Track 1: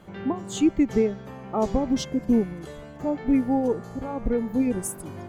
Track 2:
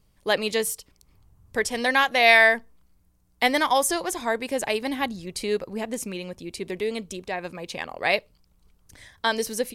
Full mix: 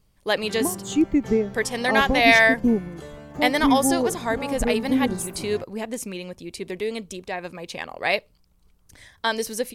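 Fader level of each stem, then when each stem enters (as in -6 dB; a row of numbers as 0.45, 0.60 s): +0.5, 0.0 dB; 0.35, 0.00 s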